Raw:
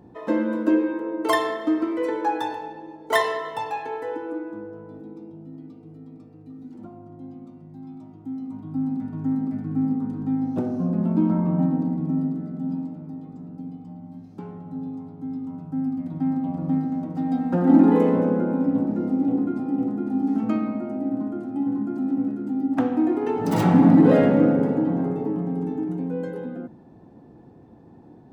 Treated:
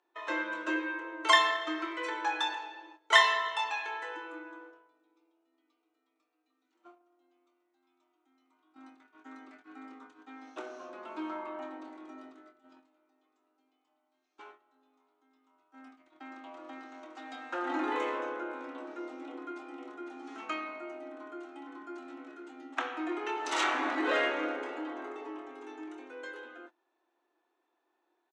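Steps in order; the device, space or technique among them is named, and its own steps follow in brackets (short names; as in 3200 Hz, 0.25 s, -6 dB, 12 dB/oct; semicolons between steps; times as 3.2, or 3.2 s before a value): HPF 1400 Hz 12 dB/oct; phone speaker on a table (speaker cabinet 330–6800 Hz, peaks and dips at 340 Hz +9 dB, 480 Hz -7 dB, 820 Hz -6 dB, 1800 Hz -4 dB, 4900 Hz -9 dB); doubler 26 ms -8.5 dB; gate -58 dBFS, range -15 dB; gain +7 dB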